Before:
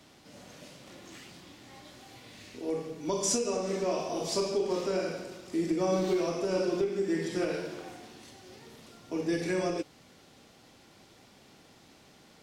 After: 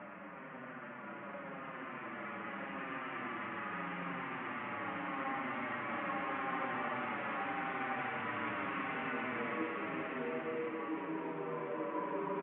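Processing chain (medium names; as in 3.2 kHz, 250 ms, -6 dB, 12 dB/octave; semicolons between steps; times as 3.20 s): CVSD coder 16 kbps; recorder AGC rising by 9.7 dB/s; level-controlled noise filter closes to 1.6 kHz, open at -27.5 dBFS; Paulstretch 4.8×, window 1.00 s, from 0.53 s; cabinet simulation 240–2200 Hz, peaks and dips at 340 Hz -7 dB, 480 Hz -5 dB, 710 Hz -4 dB, 1.2 kHz +6 dB; on a send: two-band feedback delay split 1.1 kHz, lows 168 ms, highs 344 ms, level -8.5 dB; on the sum: endless flanger 6.6 ms -0.83 Hz; trim +1.5 dB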